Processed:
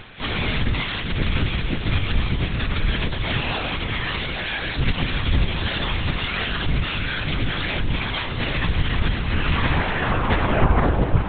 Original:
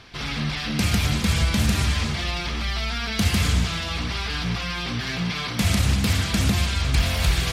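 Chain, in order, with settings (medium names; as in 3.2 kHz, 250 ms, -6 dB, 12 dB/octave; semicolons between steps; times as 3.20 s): tape stop on the ending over 2.18 s; band-stop 1.3 kHz, Q 16; in parallel at -0.5 dB: peak limiter -19 dBFS, peak gain reduction 9 dB; on the sum: gain riding 0.5 s; plain phase-vocoder stretch 1.5×; on a send: echo that smears into a reverb 575 ms, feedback 46%, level -9.5 dB; on the sum: LPC vocoder at 8 kHz whisper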